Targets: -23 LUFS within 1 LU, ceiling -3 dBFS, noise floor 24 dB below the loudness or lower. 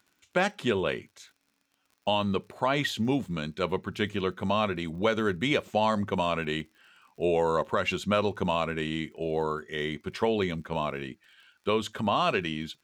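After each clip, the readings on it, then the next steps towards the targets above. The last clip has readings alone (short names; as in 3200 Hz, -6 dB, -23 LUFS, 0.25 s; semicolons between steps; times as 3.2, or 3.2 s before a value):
ticks 45/s; loudness -29.0 LUFS; peak -13.0 dBFS; loudness target -23.0 LUFS
-> de-click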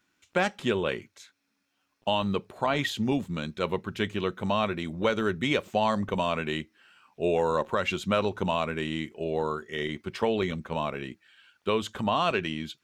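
ticks 0.078/s; loudness -29.0 LUFS; peak -13.0 dBFS; loudness target -23.0 LUFS
-> gain +6 dB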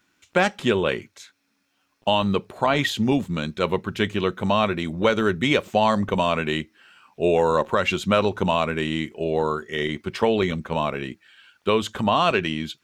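loudness -23.0 LUFS; peak -7.0 dBFS; noise floor -70 dBFS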